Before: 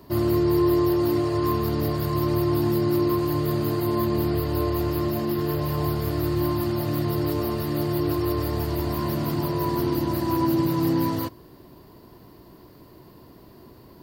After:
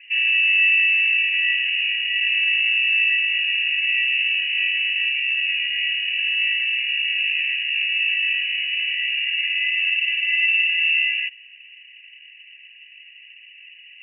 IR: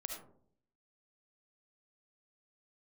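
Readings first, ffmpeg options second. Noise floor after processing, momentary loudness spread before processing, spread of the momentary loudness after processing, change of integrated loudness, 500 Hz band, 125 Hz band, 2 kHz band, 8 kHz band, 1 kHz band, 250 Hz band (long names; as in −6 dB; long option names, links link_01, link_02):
−46 dBFS, 5 LU, 5 LU, +6.5 dB, below −40 dB, below −40 dB, +25.0 dB, below −35 dB, below −40 dB, below −40 dB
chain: -filter_complex "[0:a]acrossover=split=200[link_01][link_02];[link_01]asoftclip=type=tanh:threshold=-28.5dB[link_03];[link_03][link_02]amix=inputs=2:normalize=0,lowpass=frequency=2600:width_type=q:width=0.5098,lowpass=frequency=2600:width_type=q:width=0.6013,lowpass=frequency=2600:width_type=q:width=0.9,lowpass=frequency=2600:width_type=q:width=2.563,afreqshift=-3000,afftfilt=real='re*eq(mod(floor(b*sr/1024/1600),2),1)':imag='im*eq(mod(floor(b*sr/1024/1600),2),1)':win_size=1024:overlap=0.75,volume=3.5dB"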